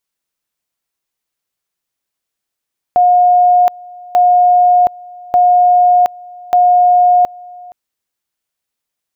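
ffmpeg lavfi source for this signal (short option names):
-f lavfi -i "aevalsrc='pow(10,(-5.5-24.5*gte(mod(t,1.19),0.72))/20)*sin(2*PI*717*t)':d=4.76:s=44100"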